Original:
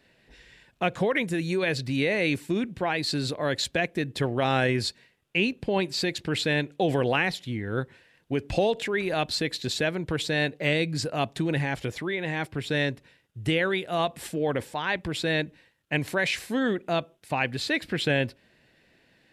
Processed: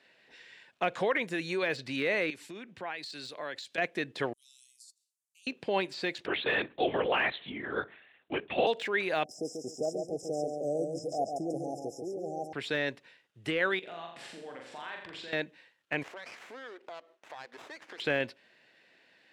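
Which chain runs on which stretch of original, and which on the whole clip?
0:02.30–0:03.78: high-shelf EQ 2,200 Hz +8 dB + downward compressor 12 to 1, threshold −32 dBFS + multiband upward and downward expander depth 100%
0:04.33–0:05.47: inverse Chebyshev high-pass filter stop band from 1,800 Hz, stop band 70 dB + compressor whose output falls as the input rises −48 dBFS
0:06.26–0:08.67: feedback echo with a low-pass in the loop 62 ms, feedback 40%, low-pass 2,200 Hz, level −22.5 dB + linear-prediction vocoder at 8 kHz whisper
0:09.24–0:12.53: linear-phase brick-wall band-stop 820–5,000 Hz + low-shelf EQ 120 Hz −8.5 dB + repeating echo 139 ms, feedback 28%, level −5 dB
0:13.79–0:15.33: downward compressor 8 to 1, threshold −39 dBFS + high-frequency loss of the air 64 metres + flutter between parallel walls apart 7.1 metres, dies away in 0.65 s
0:16.03–0:18.00: high-pass filter 310 Hz 24 dB per octave + downward compressor 5 to 1, threshold −41 dBFS + windowed peak hold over 9 samples
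whole clip: meter weighting curve A; de-essing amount 100%; high-shelf EQ 9,700 Hz −10.5 dB

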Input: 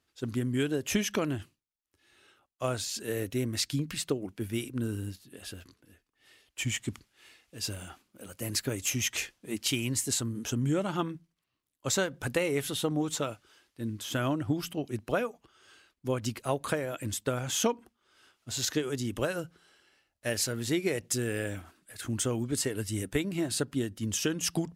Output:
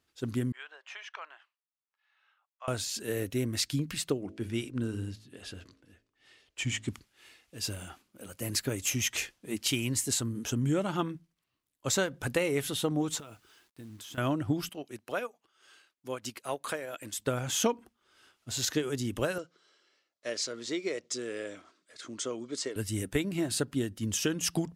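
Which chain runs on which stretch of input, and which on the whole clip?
0:00.52–0:02.68: inverse Chebyshev high-pass filter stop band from 200 Hz, stop band 70 dB + head-to-tape spacing loss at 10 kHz 36 dB
0:04.21–0:06.88: low-pass filter 7,300 Hz + hum removal 53.83 Hz, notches 12
0:13.19–0:14.18: notch filter 560 Hz, Q 5.4 + downward compressor 12 to 1, threshold −42 dBFS + log-companded quantiser 6 bits
0:14.69–0:17.19: high-pass filter 550 Hz 6 dB per octave + transient designer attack −3 dB, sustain −7 dB
0:19.38–0:22.76: loudspeaker in its box 390–6,700 Hz, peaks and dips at 810 Hz −10 dB, 1,700 Hz −6 dB, 2,700 Hz −7 dB + notch filter 1,500 Hz, Q 24
whole clip: no processing

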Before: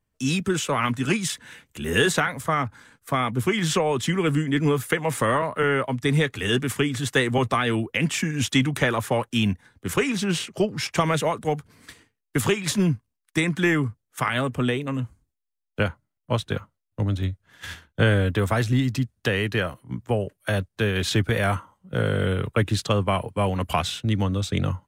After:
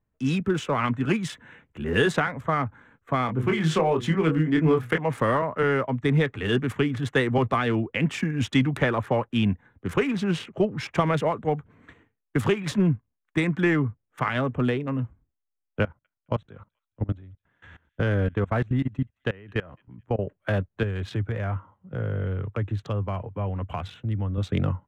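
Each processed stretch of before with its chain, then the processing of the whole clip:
0:03.26–0:04.98: mains-hum notches 60/120/180/240/300/360/420/480 Hz + double-tracking delay 25 ms −5 dB
0:15.83–0:20.19: output level in coarse steps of 22 dB + delay with a high-pass on its return 215 ms, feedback 33%, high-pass 3,000 Hz, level −23 dB
0:20.83–0:24.38: parametric band 100 Hz +7.5 dB 0.57 octaves + downward compressor 1.5 to 1, threshold −39 dBFS + high-pass filter 58 Hz
whole clip: adaptive Wiener filter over 9 samples; low-pass filter 2,100 Hz 6 dB per octave

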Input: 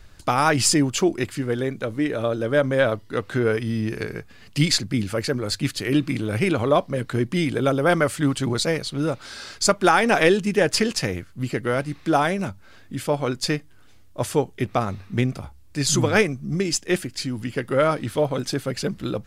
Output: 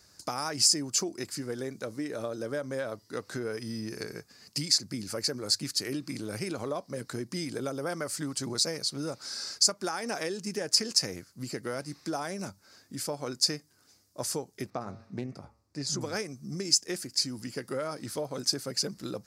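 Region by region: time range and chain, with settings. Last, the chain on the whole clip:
0:14.70–0:16.01: low-pass filter 1,400 Hz 6 dB per octave + hum removal 113.1 Hz, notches 25 + highs frequency-modulated by the lows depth 0.13 ms
whole clip: downward compressor, threshold −22 dBFS; Bessel high-pass filter 160 Hz, order 2; high shelf with overshoot 4,000 Hz +7.5 dB, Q 3; level −7.5 dB

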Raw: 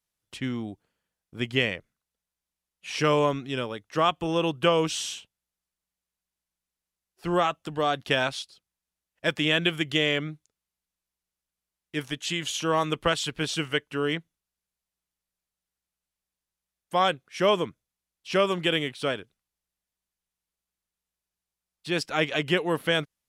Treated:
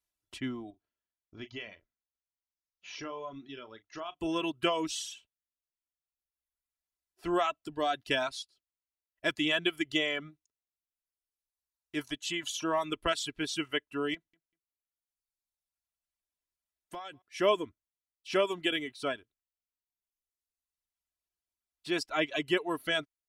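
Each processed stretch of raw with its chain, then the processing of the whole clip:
0:00.70–0:04.20: Chebyshev low-pass filter 6,800 Hz, order 10 + downward compressor 2 to 1, threshold −41 dBFS + double-tracking delay 36 ms −10 dB
0:14.14–0:17.22: downward compressor 12 to 1, threshold −32 dBFS + gain into a clipping stage and back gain 25 dB + repeating echo 193 ms, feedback 19%, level −17 dB
whole clip: reverb reduction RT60 1.5 s; comb filter 3 ms, depth 56%; level −5.5 dB

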